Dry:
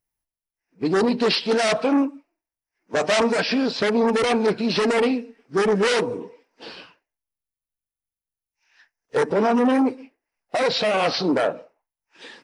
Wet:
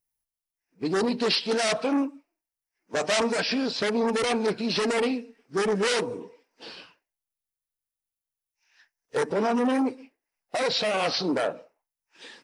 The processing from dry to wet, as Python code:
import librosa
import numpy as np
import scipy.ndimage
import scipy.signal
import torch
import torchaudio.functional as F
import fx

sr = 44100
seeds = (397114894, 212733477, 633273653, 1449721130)

y = fx.high_shelf(x, sr, hz=4300.0, db=7.5)
y = y * 10.0 ** (-5.5 / 20.0)